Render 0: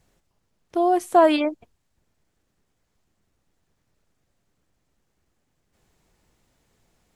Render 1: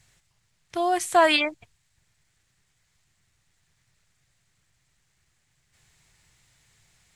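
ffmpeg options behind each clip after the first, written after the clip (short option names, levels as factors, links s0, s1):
-af "equalizer=f=125:t=o:w=1:g=9,equalizer=f=250:t=o:w=1:g=-9,equalizer=f=500:t=o:w=1:g=-5,equalizer=f=2000:t=o:w=1:g=9,equalizer=f=4000:t=o:w=1:g=6,equalizer=f=8000:t=o:w=1:g=10,volume=0.891"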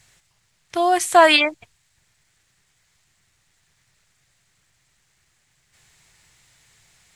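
-af "lowshelf=f=240:g=-6,volume=2.11"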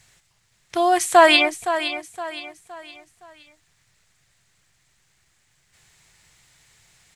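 -af "aecho=1:1:516|1032|1548|2064:0.282|0.11|0.0429|0.0167"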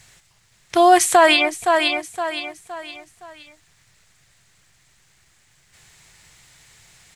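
-af "alimiter=limit=0.335:level=0:latency=1:release=392,volume=2"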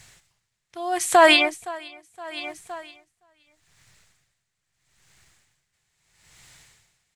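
-af "aeval=exprs='val(0)*pow(10,-22*(0.5-0.5*cos(2*PI*0.77*n/s))/20)':c=same"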